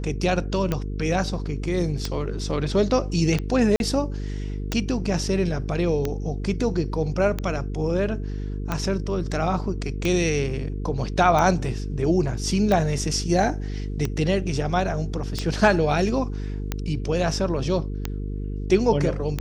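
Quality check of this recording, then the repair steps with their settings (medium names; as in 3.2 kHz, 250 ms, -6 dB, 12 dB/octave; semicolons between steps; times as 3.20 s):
buzz 50 Hz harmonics 9 -29 dBFS
tick 45 rpm -11 dBFS
3.76–3.80 s: dropout 41 ms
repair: de-click; de-hum 50 Hz, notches 9; interpolate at 3.76 s, 41 ms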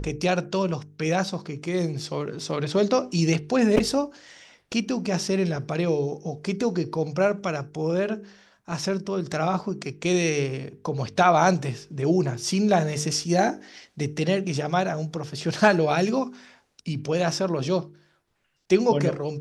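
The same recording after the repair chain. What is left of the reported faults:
nothing left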